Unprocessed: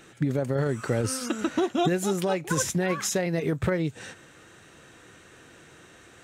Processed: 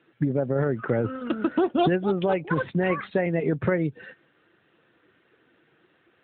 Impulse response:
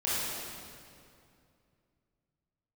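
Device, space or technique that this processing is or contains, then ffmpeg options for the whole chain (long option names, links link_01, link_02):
mobile call with aggressive noise cancelling: -filter_complex "[0:a]asplit=3[link_01][link_02][link_03];[link_01]afade=type=out:start_time=1.81:duration=0.02[link_04];[link_02]highpass=71,afade=type=in:start_time=1.81:duration=0.02,afade=type=out:start_time=2.31:duration=0.02[link_05];[link_03]afade=type=in:start_time=2.31:duration=0.02[link_06];[link_04][link_05][link_06]amix=inputs=3:normalize=0,highpass=frequency=140:poles=1,afftdn=noise_reduction=13:noise_floor=-38,volume=3.5dB" -ar 8000 -c:a libopencore_amrnb -b:a 12200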